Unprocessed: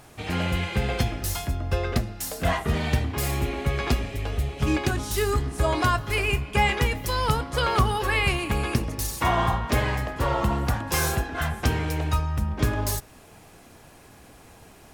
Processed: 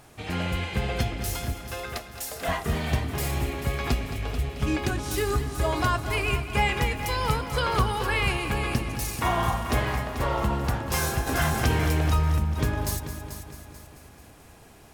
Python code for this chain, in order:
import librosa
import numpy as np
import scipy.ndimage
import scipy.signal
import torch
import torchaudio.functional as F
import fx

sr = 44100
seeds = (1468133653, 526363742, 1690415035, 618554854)

y = fx.highpass(x, sr, hz=fx.line((1.53, 850.0), (2.47, 360.0)), slope=12, at=(1.53, 2.47), fade=0.02)
y = fx.echo_heads(y, sr, ms=219, heads='first and second', feedback_pct=49, wet_db=-12.5)
y = fx.env_flatten(y, sr, amount_pct=50, at=(11.26, 12.37), fade=0.02)
y = y * librosa.db_to_amplitude(-2.5)